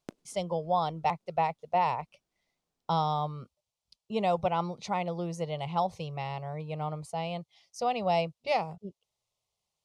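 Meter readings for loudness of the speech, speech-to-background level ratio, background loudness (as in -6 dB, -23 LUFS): -31.5 LUFS, 19.0 dB, -50.5 LUFS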